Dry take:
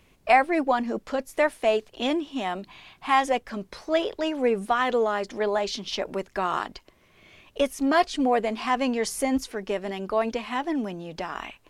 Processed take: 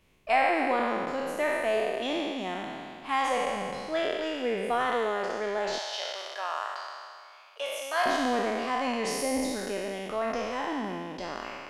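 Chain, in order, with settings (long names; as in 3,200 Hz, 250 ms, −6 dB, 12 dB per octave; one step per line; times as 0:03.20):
peak hold with a decay on every bin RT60 2.22 s
0:05.78–0:08.06: high-pass filter 610 Hz 24 dB per octave
level −8.5 dB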